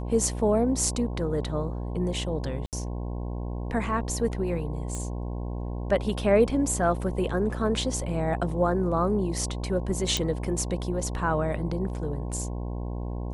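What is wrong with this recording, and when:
mains buzz 60 Hz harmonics 18 −32 dBFS
0:02.66–0:02.73: drop-out 68 ms
0:04.95: click −21 dBFS
0:10.17: click

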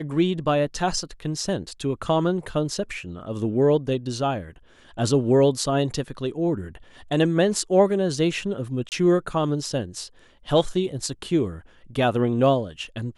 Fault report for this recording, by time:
0:08.89–0:08.92: drop-out 28 ms

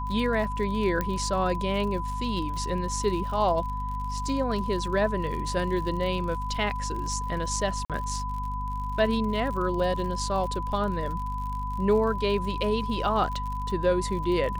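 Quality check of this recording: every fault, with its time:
surface crackle 65 per second −34 dBFS
mains hum 50 Hz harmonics 5 −33 dBFS
whistle 1,000 Hz −32 dBFS
0:01.01: click −14 dBFS
0:07.85–0:07.90: drop-out 47 ms

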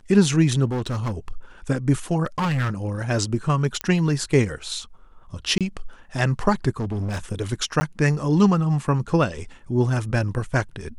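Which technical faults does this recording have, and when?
0:00.65–0:01.32: clipping −22 dBFS
0:02.24–0:03.10: clipping −19.5 dBFS
0:03.81: click −9 dBFS
0:05.58–0:05.61: drop-out 27 ms
0:06.79–0:07.19: clipping −23 dBFS
0:07.80–0:07.81: drop-out 10 ms

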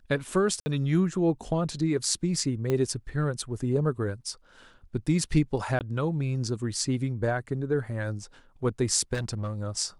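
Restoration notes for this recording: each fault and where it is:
0:00.60–0:00.66: drop-out 60 ms
0:02.70: click −15 dBFS
0:05.79–0:05.81: drop-out 18 ms
0:09.13–0:09.54: clipping −26 dBFS

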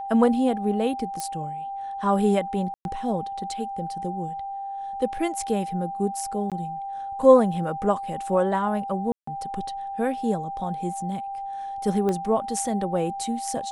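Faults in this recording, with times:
whistle 790 Hz −30 dBFS
0:01.20: click −16 dBFS
0:02.74–0:02.85: drop-out 111 ms
0:06.50–0:06.52: drop-out 17 ms
0:09.12–0:09.27: drop-out 154 ms
0:12.09: click −15 dBFS

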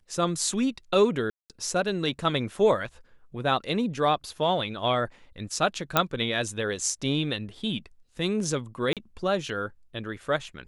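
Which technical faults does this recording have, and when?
0:01.30–0:01.50: drop-out 198 ms
0:05.97: click −5 dBFS
0:08.93–0:08.97: drop-out 37 ms

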